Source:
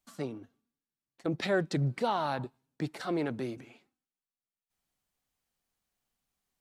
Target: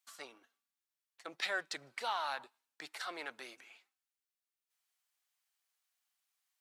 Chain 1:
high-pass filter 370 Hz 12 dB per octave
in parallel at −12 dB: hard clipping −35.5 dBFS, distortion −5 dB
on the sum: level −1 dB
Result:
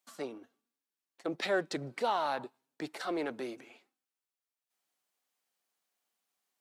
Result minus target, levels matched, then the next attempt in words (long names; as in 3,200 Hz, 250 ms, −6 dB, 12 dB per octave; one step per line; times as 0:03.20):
500 Hz band +8.0 dB
high-pass filter 1,200 Hz 12 dB per octave
in parallel at −12 dB: hard clipping −35.5 dBFS, distortion −9 dB
on the sum: level −1 dB